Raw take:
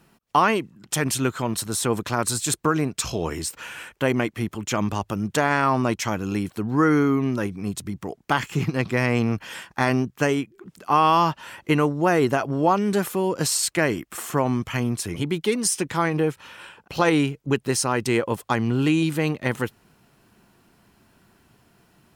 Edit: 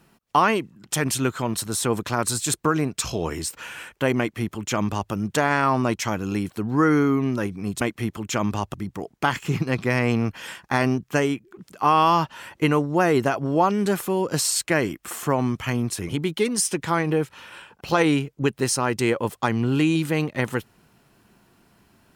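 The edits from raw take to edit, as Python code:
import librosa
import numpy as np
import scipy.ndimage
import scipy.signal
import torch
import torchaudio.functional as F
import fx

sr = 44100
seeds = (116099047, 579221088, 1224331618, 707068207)

y = fx.edit(x, sr, fx.duplicate(start_s=4.19, length_s=0.93, to_s=7.81), tone=tone)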